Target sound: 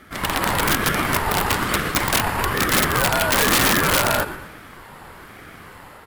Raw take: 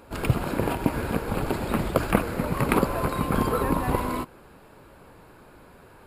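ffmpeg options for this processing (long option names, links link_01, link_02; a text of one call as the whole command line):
ffmpeg -i in.wav -filter_complex "[0:a]highpass=frequency=430:width=0.5412,highpass=frequency=430:width=1.3066,dynaudnorm=framelen=110:gausssize=5:maxgain=6.5dB,asplit=2[link_01][link_02];[link_02]asplit=4[link_03][link_04][link_05][link_06];[link_03]adelay=118,afreqshift=-110,volume=-12.5dB[link_07];[link_04]adelay=236,afreqshift=-220,volume=-19.6dB[link_08];[link_05]adelay=354,afreqshift=-330,volume=-26.8dB[link_09];[link_06]adelay=472,afreqshift=-440,volume=-33.9dB[link_10];[link_07][link_08][link_09][link_10]amix=inputs=4:normalize=0[link_11];[link_01][link_11]amix=inputs=2:normalize=0,aeval=exprs='(mod(6.68*val(0)+1,2)-1)/6.68':channel_layout=same,aeval=exprs='val(0)*sin(2*PI*580*n/s+580*0.35/1.1*sin(2*PI*1.1*n/s))':channel_layout=same,volume=8.5dB" out.wav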